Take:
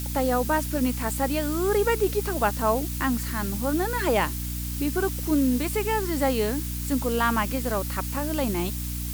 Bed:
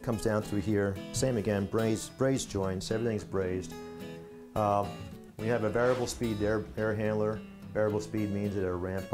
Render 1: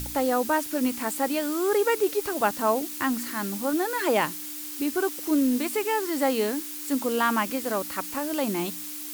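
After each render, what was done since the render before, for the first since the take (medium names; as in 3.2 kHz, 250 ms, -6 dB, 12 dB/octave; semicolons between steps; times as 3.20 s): de-hum 60 Hz, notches 4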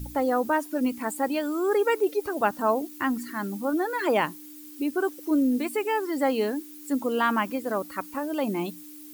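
noise reduction 14 dB, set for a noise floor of -36 dBFS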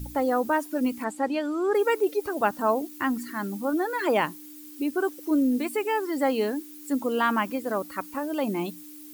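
1.04–1.75 s: distance through air 63 m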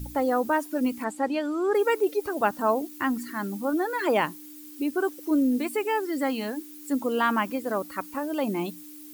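6.00–6.56 s: peaking EQ 1.3 kHz -> 300 Hz -14 dB 0.37 oct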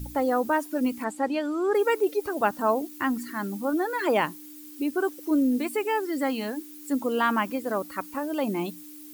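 no audible change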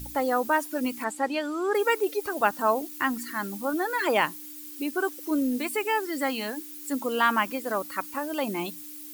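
tilt shelf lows -4.5 dB, about 740 Hz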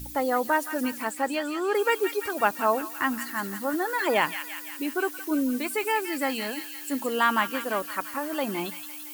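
feedback echo behind a high-pass 170 ms, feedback 63%, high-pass 1.8 kHz, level -6 dB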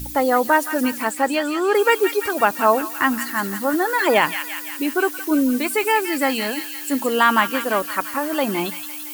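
trim +7.5 dB; peak limiter -3 dBFS, peak gain reduction 3 dB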